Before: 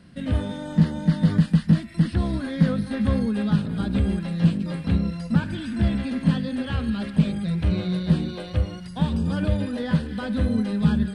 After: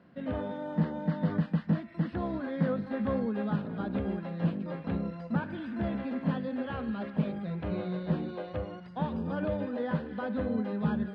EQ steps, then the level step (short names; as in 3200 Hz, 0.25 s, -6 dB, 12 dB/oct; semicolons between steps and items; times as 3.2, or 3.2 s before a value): band-pass 700 Hz, Q 0.81; air absorption 110 m; 0.0 dB